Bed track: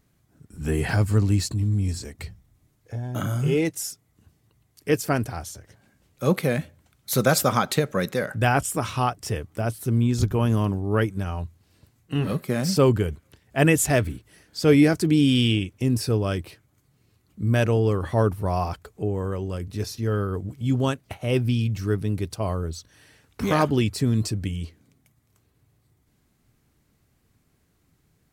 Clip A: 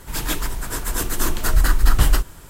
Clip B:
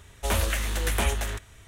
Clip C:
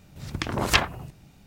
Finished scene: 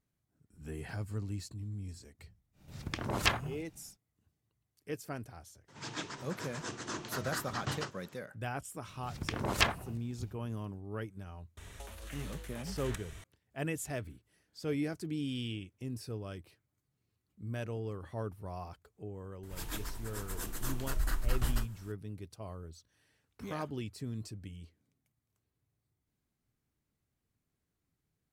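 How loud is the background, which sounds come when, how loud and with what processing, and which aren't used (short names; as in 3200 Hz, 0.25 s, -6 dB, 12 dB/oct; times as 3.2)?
bed track -18 dB
2.52 add C -8.5 dB, fades 0.10 s
5.68 add A -12.5 dB + elliptic band-pass 110–6300 Hz
8.87 add C -7.5 dB
11.57 add B -8.5 dB + negative-ratio compressor -36 dBFS
19.43 add A -16.5 dB + upward compressor, threshold -35 dBFS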